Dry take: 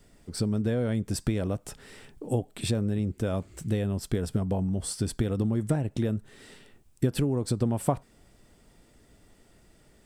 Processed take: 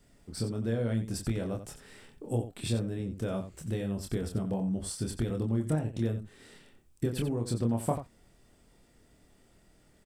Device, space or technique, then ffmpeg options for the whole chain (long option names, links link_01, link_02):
slapback doubling: -filter_complex "[0:a]asplit=3[link_01][link_02][link_03];[link_02]adelay=26,volume=-4dB[link_04];[link_03]adelay=90,volume=-10.5dB[link_05];[link_01][link_04][link_05]amix=inputs=3:normalize=0,volume=-5.5dB"